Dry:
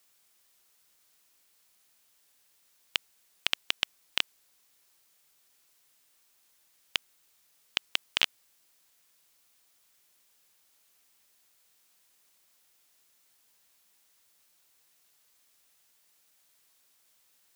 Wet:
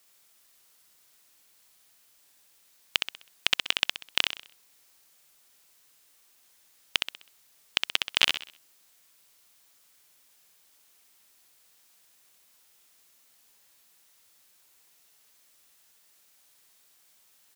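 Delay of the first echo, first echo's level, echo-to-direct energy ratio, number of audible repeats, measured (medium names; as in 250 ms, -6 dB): 64 ms, -5.0 dB, -4.5 dB, 4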